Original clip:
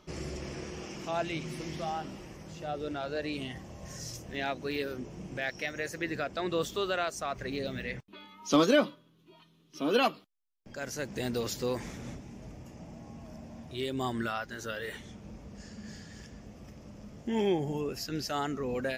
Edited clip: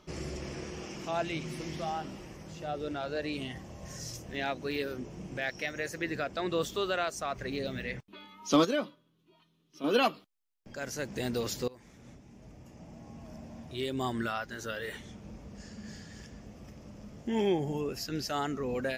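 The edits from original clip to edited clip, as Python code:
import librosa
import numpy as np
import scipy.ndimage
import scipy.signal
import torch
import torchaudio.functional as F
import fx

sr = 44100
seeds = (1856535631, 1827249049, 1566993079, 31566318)

y = fx.edit(x, sr, fx.clip_gain(start_s=8.65, length_s=1.19, db=-7.0),
    fx.fade_in_from(start_s=11.68, length_s=1.69, floor_db=-22.5), tone=tone)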